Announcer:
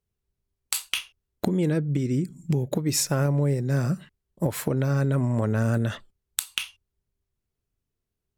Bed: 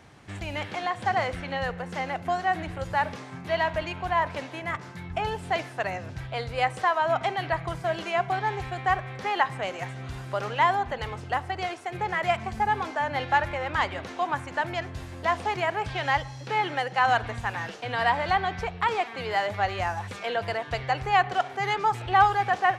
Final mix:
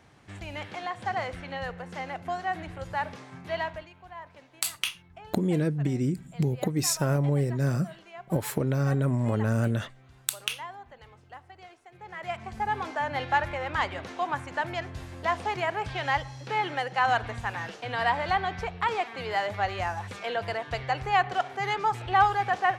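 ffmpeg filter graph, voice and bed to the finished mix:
-filter_complex "[0:a]adelay=3900,volume=-2dB[a];[1:a]volume=11.5dB,afade=t=out:st=3.6:d=0.29:silence=0.211349,afade=t=in:st=11.99:d=0.92:silence=0.149624[b];[a][b]amix=inputs=2:normalize=0"

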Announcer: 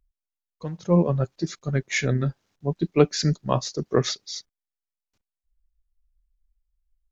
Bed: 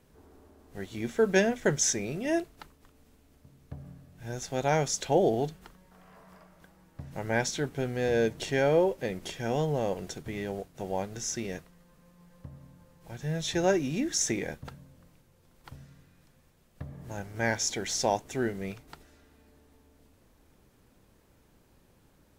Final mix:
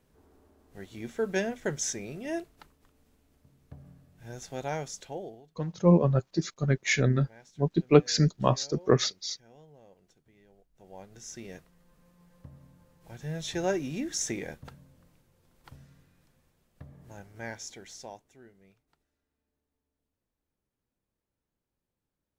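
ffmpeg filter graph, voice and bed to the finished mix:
-filter_complex "[0:a]adelay=4950,volume=-1dB[a];[1:a]volume=17.5dB,afade=t=out:st=4.54:d=0.89:silence=0.0891251,afade=t=in:st=10.68:d=1.38:silence=0.0707946,afade=t=out:st=15.97:d=2.41:silence=0.0891251[b];[a][b]amix=inputs=2:normalize=0"

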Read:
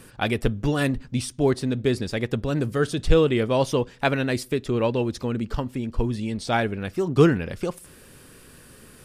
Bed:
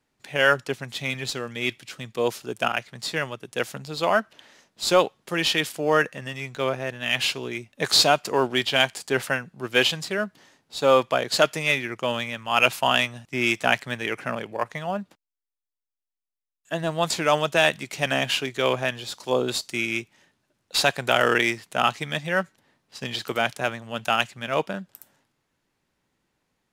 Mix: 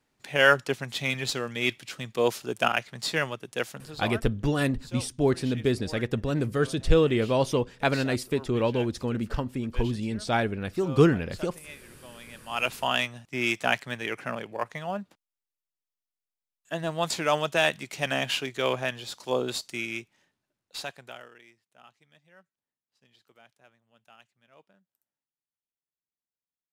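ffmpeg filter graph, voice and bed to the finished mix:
-filter_complex "[0:a]adelay=3800,volume=-2.5dB[a];[1:a]volume=19dB,afade=t=out:st=3.29:d=0.93:silence=0.0707946,afade=t=in:st=12.12:d=0.97:silence=0.112202,afade=t=out:st=19.33:d=1.97:silence=0.0354813[b];[a][b]amix=inputs=2:normalize=0"

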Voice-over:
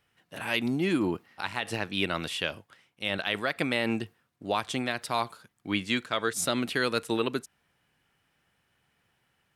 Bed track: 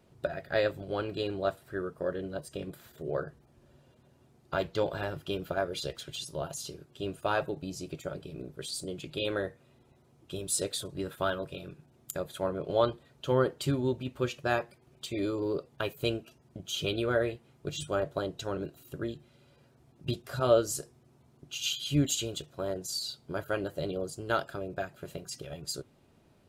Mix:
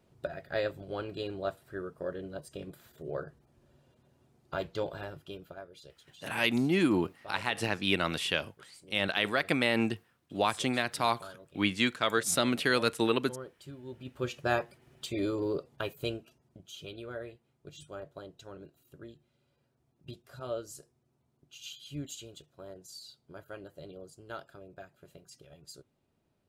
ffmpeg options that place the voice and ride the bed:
-filter_complex "[0:a]adelay=5900,volume=0.5dB[a];[1:a]volume=13.5dB,afade=t=out:st=4.75:d=0.92:silence=0.211349,afade=t=in:st=13.85:d=0.61:silence=0.133352,afade=t=out:st=15.4:d=1.37:silence=0.223872[b];[a][b]amix=inputs=2:normalize=0"

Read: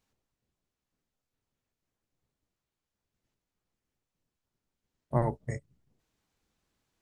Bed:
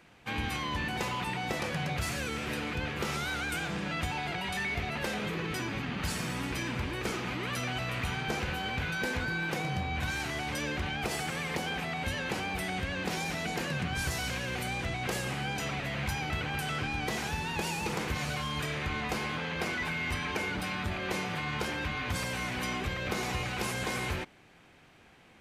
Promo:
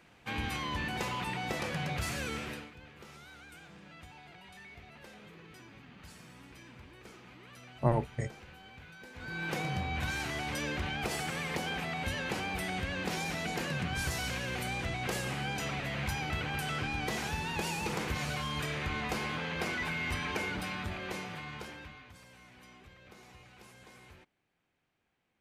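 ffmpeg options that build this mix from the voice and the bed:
-filter_complex "[0:a]adelay=2700,volume=0dB[a];[1:a]volume=15dB,afade=t=out:st=2.35:d=0.36:silence=0.149624,afade=t=in:st=9.14:d=0.4:silence=0.141254,afade=t=out:st=20.37:d=1.75:silence=0.0944061[b];[a][b]amix=inputs=2:normalize=0"

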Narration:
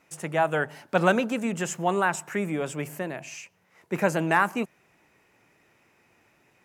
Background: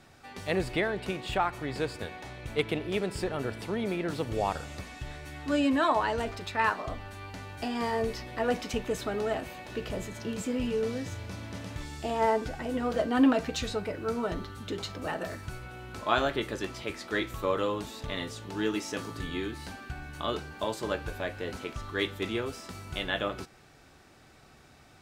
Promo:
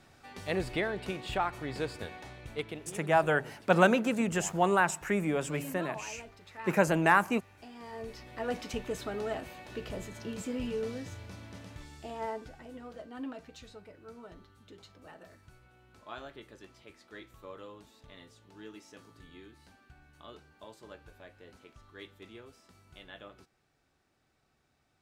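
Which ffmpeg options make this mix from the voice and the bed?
-filter_complex "[0:a]adelay=2750,volume=-1.5dB[a];[1:a]volume=9dB,afade=t=out:st=2.15:d=0.82:silence=0.211349,afade=t=in:st=7.83:d=0.82:silence=0.251189,afade=t=out:st=10.71:d=2.29:silence=0.211349[b];[a][b]amix=inputs=2:normalize=0"

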